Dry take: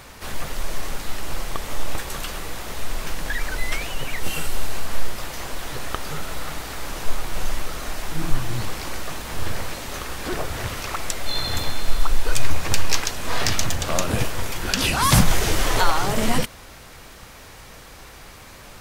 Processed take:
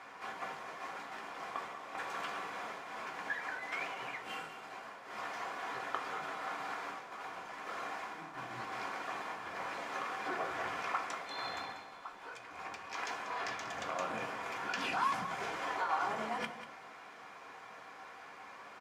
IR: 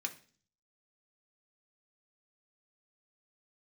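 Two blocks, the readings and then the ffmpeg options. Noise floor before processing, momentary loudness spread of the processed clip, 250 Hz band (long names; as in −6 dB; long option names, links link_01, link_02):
−43 dBFS, 13 LU, −19.0 dB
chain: -filter_complex "[0:a]areverse,acompressor=threshold=-21dB:ratio=10,areverse,bandpass=frequency=880:width_type=q:width=1.1:csg=0,aecho=1:1:190:0.251[link_01];[1:a]atrim=start_sample=2205,asetrate=41895,aresample=44100[link_02];[link_01][link_02]afir=irnorm=-1:irlink=0,volume=-1.5dB"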